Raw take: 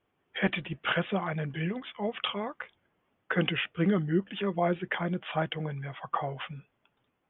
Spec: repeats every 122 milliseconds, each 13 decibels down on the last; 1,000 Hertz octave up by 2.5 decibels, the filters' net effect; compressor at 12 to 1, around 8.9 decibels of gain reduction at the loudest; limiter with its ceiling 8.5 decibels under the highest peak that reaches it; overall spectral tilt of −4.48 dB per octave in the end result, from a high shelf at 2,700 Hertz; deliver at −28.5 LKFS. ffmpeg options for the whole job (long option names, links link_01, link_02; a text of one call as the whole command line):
ffmpeg -i in.wav -af "equalizer=frequency=1000:width_type=o:gain=4,highshelf=frequency=2700:gain=-3,acompressor=threshold=-30dB:ratio=12,alimiter=level_in=2dB:limit=-24dB:level=0:latency=1,volume=-2dB,aecho=1:1:122|244|366:0.224|0.0493|0.0108,volume=9dB" out.wav